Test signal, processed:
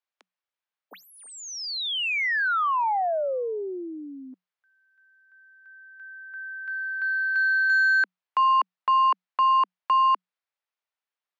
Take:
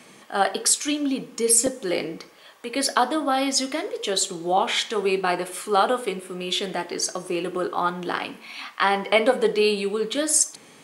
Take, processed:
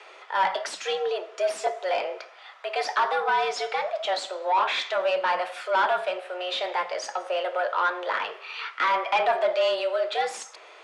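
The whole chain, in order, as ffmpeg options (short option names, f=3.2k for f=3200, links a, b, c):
-filter_complex "[0:a]asplit=2[a][b];[b]highpass=f=720:p=1,volume=20dB,asoftclip=type=tanh:threshold=-5.5dB[c];[a][c]amix=inputs=2:normalize=0,lowpass=f=1.6k:p=1,volume=-6dB,afreqshift=180,highpass=330,lowpass=5.4k,volume=-7dB"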